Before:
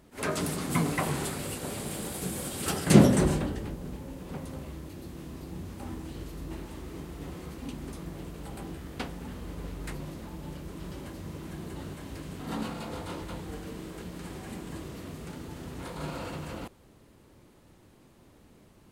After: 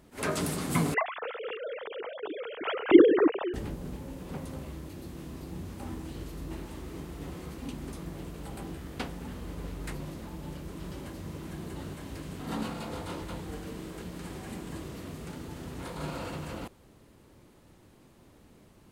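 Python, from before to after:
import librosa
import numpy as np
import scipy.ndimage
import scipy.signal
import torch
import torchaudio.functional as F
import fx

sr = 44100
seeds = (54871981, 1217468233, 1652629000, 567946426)

y = fx.sine_speech(x, sr, at=(0.94, 3.54))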